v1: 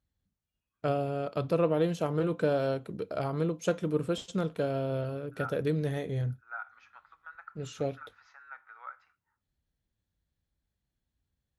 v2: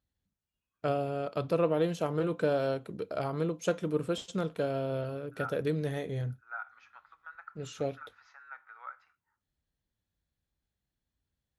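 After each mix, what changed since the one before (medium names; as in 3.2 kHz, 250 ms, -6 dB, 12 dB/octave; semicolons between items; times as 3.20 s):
master: add bass shelf 230 Hz -4 dB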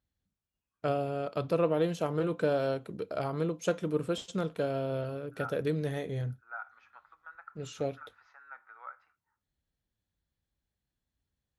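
second voice: add tilt EQ -3 dB/octave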